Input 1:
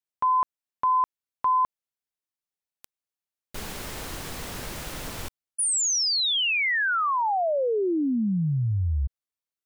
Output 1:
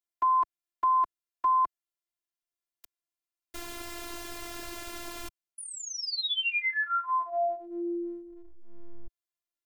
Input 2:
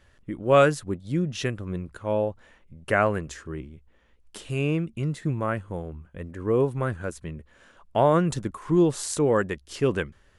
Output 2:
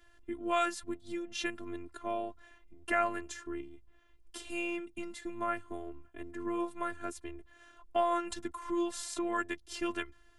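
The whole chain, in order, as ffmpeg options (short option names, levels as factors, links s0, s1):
-filter_complex "[0:a]acrossover=split=100|690|4200[s0][s1][s2][s3];[s0]acompressor=threshold=0.00355:ratio=1.5[s4];[s1]acompressor=threshold=0.0251:ratio=5[s5];[s2]acompressor=threshold=0.0631:ratio=2.5[s6];[s3]acompressor=threshold=0.0112:ratio=6[s7];[s4][s5][s6][s7]amix=inputs=4:normalize=0,afftfilt=real='hypot(re,im)*cos(PI*b)':imag='0':win_size=512:overlap=0.75"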